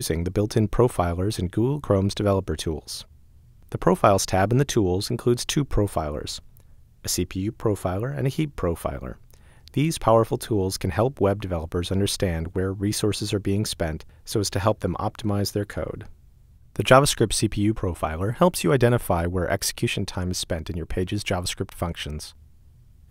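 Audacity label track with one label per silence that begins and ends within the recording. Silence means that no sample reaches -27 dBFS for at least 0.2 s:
3.000000	3.720000	silence
6.370000	7.050000	silence
9.120000	9.680000	silence
14.000000	14.280000	silence
15.940000	16.760000	silence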